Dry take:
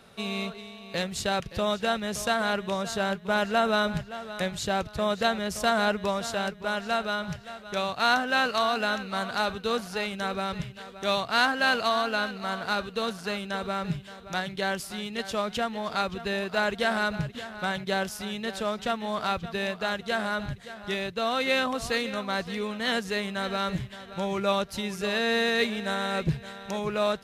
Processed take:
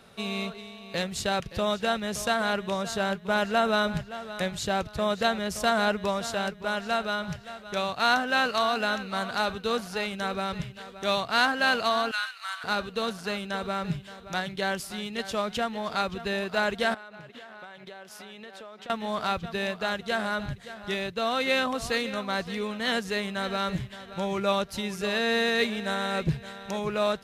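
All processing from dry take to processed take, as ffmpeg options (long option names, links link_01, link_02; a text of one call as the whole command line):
ffmpeg -i in.wav -filter_complex "[0:a]asettb=1/sr,asplit=3[link_01][link_02][link_03];[link_01]atrim=end=12.114[link_04];[link_02]atrim=start=12.11:end=12.64,asetpts=PTS-STARTPTS,afade=type=in:duration=0.004:curve=qsin,afade=type=out:start_time=0.526:duration=0.004:curve=qsin,highpass=frequency=1200:width=0.5412,highpass=frequency=1200:width=1.3066,equalizer=frequency=9300:width=1.9:gain=5.5[link_05];[link_03]atrim=start=12.636[link_06];[link_04][link_05]acrossfade=duration=0.004:curve1=hsin:curve2=qsin[link_07];[link_07][link_06]acrossfade=duration=0.004:curve1=qsin:curve2=hsin,asettb=1/sr,asplit=3[link_08][link_09][link_10];[link_08]atrim=end=16.944[link_11];[link_09]atrim=start=16.94:end=18.9,asetpts=PTS-STARTPTS,afade=type=in:duration=0.004:curve=qsin,afade=type=out:start_time=1.956:duration=0.004:curve=qsin,highpass=130,bass=frequency=250:gain=-11,treble=frequency=4000:gain=-8,acompressor=threshold=-40dB:ratio=12:attack=3.2:release=140:knee=1:detection=peak[link_12];[link_10]atrim=start=18.896[link_13];[link_11][link_12]acrossfade=duration=0.004:curve1=hsin:curve2=qsin[link_14];[link_14][link_13]acrossfade=duration=0.004:curve1=qsin:curve2=hsin" out.wav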